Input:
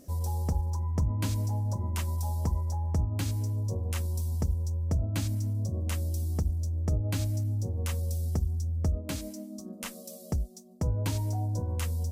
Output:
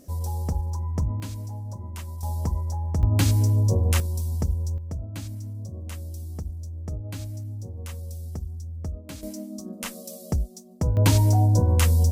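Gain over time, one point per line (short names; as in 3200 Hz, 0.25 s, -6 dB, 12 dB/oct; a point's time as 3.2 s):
+2 dB
from 1.2 s -4.5 dB
from 2.23 s +2.5 dB
from 3.03 s +10.5 dB
from 4 s +3.5 dB
from 4.78 s -4.5 dB
from 9.23 s +5 dB
from 10.97 s +12 dB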